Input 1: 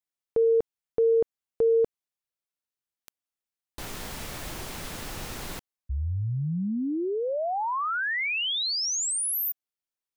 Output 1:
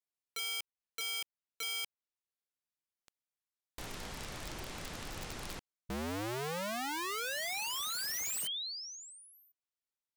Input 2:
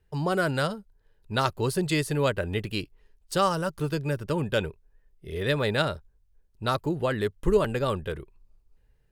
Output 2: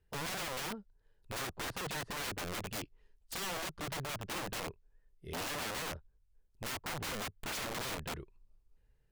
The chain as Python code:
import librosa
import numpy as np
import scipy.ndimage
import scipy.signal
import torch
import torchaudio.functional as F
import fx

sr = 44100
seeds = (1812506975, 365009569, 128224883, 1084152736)

y = fx.env_lowpass_down(x, sr, base_hz=740.0, full_db=-20.5)
y = (np.mod(10.0 ** (28.0 / 20.0) * y + 1.0, 2.0) - 1.0) / 10.0 ** (28.0 / 20.0)
y = y * librosa.db_to_amplitude(-6.0)